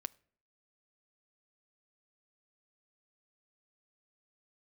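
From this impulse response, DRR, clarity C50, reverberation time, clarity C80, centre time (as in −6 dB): 17.0 dB, 25.0 dB, 0.55 s, 28.5 dB, 2 ms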